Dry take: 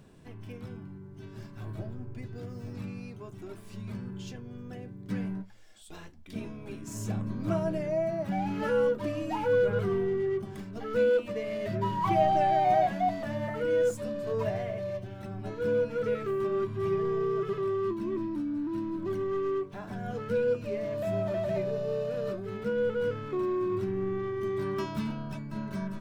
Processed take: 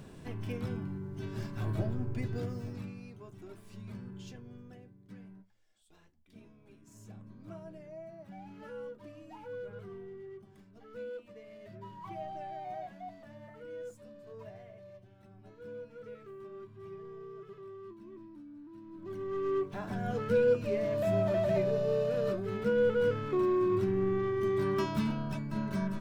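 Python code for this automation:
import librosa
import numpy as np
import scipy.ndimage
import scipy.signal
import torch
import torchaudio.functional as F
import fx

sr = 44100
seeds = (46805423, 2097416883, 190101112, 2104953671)

y = fx.gain(x, sr, db=fx.line((2.37, 5.5), (2.96, -6.0), (4.52, -6.0), (5.16, -17.5), (18.81, -17.5), (19.12, -9.0), (19.66, 1.5)))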